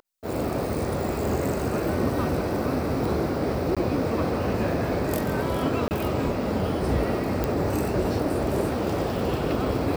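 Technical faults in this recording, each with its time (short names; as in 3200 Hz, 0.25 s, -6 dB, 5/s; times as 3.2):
3.75–3.77 gap 16 ms
5.88–5.91 gap 29 ms
7.44 pop -11 dBFS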